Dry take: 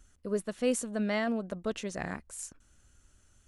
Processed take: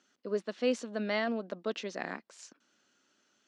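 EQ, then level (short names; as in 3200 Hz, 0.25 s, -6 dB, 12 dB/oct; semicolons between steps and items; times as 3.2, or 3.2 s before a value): HPF 230 Hz 24 dB/oct; air absorption 190 m; bell 4900 Hz +10 dB 1.4 oct; 0.0 dB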